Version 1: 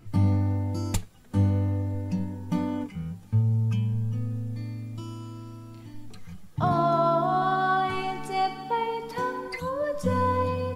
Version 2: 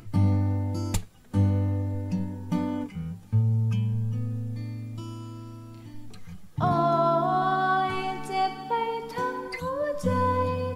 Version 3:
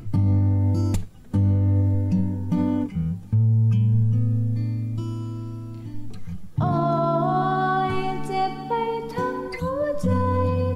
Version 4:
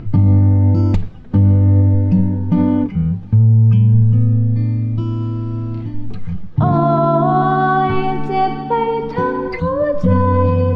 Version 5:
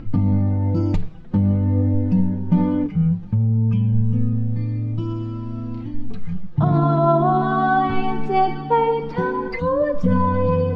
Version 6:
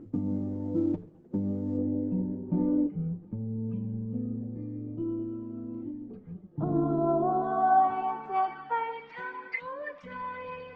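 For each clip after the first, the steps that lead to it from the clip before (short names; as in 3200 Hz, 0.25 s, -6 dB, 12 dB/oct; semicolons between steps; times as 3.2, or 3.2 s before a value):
upward compressor, threshold -44 dBFS
low shelf 450 Hz +10 dB; limiter -13.5 dBFS, peak gain reduction 9 dB
reverse; upward compressor, threshold -24 dBFS; reverse; air absorption 230 m; gain +8.5 dB
flange 0.51 Hz, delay 3.6 ms, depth 3.1 ms, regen +31%
band-pass sweep 360 Hz -> 2200 Hz, 6.94–9.15; gain -1.5 dB; Opus 16 kbps 48000 Hz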